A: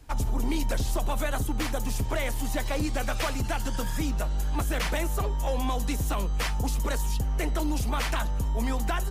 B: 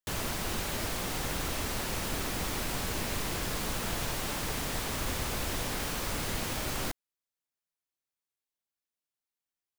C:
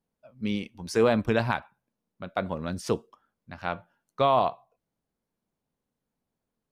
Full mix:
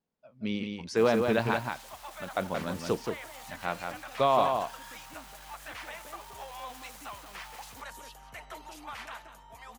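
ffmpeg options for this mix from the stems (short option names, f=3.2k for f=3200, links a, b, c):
-filter_complex "[0:a]dynaudnorm=f=620:g=5:m=5dB,bass=f=250:g=-3,treble=f=4k:g=-8,adelay=950,volume=-11dB,asplit=2[a][b];[b]volume=-13.5dB[c];[1:a]volume=35dB,asoftclip=hard,volume=-35dB,adelay=900,volume=-12.5dB[d];[2:a]lowpass=6.5k,volume=-2dB,asplit=2[e][f];[f]volume=-5dB[g];[a][d]amix=inputs=2:normalize=0,highpass=f=710:w=0.5412,highpass=f=710:w=1.3066,alimiter=level_in=8dB:limit=-24dB:level=0:latency=1:release=80,volume=-8dB,volume=0dB[h];[c][g]amix=inputs=2:normalize=0,aecho=0:1:176:1[i];[e][h][i]amix=inputs=3:normalize=0,lowshelf=f=96:g=-9"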